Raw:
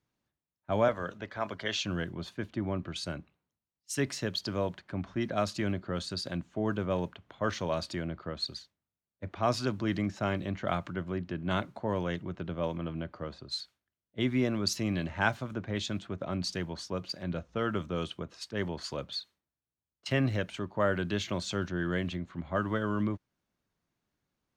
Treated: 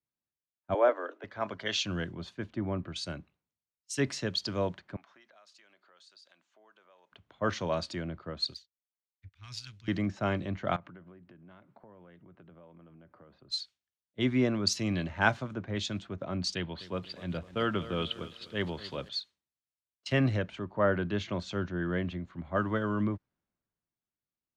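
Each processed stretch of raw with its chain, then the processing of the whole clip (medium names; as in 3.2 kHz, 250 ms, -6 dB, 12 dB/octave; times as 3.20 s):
0.74–1.24 s: steep high-pass 270 Hz 96 dB/octave + treble shelf 3.7 kHz -12 dB
4.96–7.12 s: high-pass 800 Hz + compression 4:1, threshold -52 dBFS
8.54–9.88 s: Chebyshev band-stop 100–2300 Hz + power-law waveshaper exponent 1.4
10.76–13.50 s: band-pass 100–2700 Hz + compression 10:1, threshold -44 dBFS
16.55–19.09 s: resonant high shelf 4.6 kHz -10 dB, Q 3 + bit-crushed delay 252 ms, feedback 55%, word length 8-bit, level -13 dB
20.38–22.20 s: low-pass 2.7 kHz 6 dB/octave + upward compressor, threshold -39 dBFS
whole clip: low-pass 7.6 kHz 12 dB/octave; three bands expanded up and down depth 40%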